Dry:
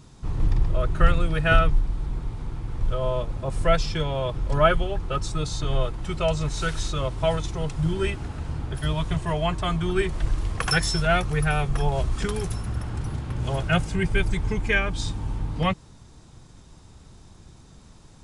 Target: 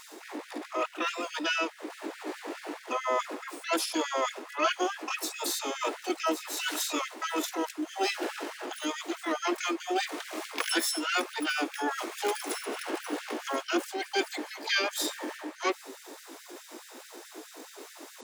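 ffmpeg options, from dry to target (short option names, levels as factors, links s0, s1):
-filter_complex "[0:a]lowshelf=f=130:t=q:w=3:g=-7.5,areverse,acompressor=threshold=0.02:ratio=5,areverse,asplit=3[s0][s1][s2];[s1]asetrate=66075,aresample=44100,atempo=0.66742,volume=0.178[s3];[s2]asetrate=88200,aresample=44100,atempo=0.5,volume=0.794[s4];[s0][s3][s4]amix=inputs=3:normalize=0,afftfilt=real='re*gte(b*sr/1024,230*pow(1500/230,0.5+0.5*sin(2*PI*4.7*pts/sr)))':imag='im*gte(b*sr/1024,230*pow(1500/230,0.5+0.5*sin(2*PI*4.7*pts/sr)))':win_size=1024:overlap=0.75,volume=2.37"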